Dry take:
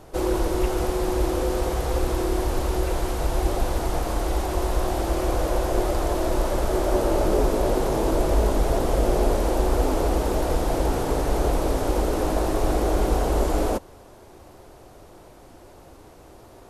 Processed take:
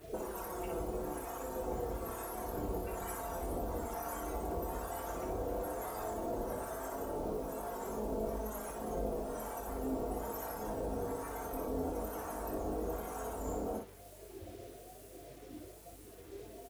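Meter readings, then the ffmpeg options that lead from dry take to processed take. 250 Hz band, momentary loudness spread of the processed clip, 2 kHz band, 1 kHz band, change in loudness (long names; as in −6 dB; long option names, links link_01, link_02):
−15.0 dB, 12 LU, −15.5 dB, −13.0 dB, −15.5 dB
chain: -filter_complex "[0:a]highpass=72,afftdn=noise_reduction=31:noise_floor=-37,adynamicequalizer=threshold=0.00398:dfrequency=2700:dqfactor=0.96:tfrequency=2700:tqfactor=0.96:attack=5:release=100:ratio=0.375:range=2:mode=boostabove:tftype=bell,aecho=1:1:4.4:0.43,alimiter=limit=-21dB:level=0:latency=1:release=99,acompressor=threshold=-42dB:ratio=10,acrossover=split=770[link_01][link_02];[link_01]aeval=exprs='val(0)*(1-0.7/2+0.7/2*cos(2*PI*1.1*n/s))':channel_layout=same[link_03];[link_02]aeval=exprs='val(0)*(1-0.7/2-0.7/2*cos(2*PI*1.1*n/s))':channel_layout=same[link_04];[link_03][link_04]amix=inputs=2:normalize=0,aeval=exprs='val(0)+0.000316*(sin(2*PI*50*n/s)+sin(2*PI*2*50*n/s)/2+sin(2*PI*3*50*n/s)/3+sin(2*PI*4*50*n/s)/4+sin(2*PI*5*50*n/s)/5)':channel_layout=same,aexciter=amount=7.6:drive=8.5:freq=6300,acrusher=bits=10:mix=0:aa=0.000001,flanger=delay=4.3:depth=9:regen=64:speed=0.12:shape=triangular,asplit=2[link_05][link_06];[link_06]aecho=0:1:23|60:0.531|0.562[link_07];[link_05][link_07]amix=inputs=2:normalize=0,volume=11.5dB"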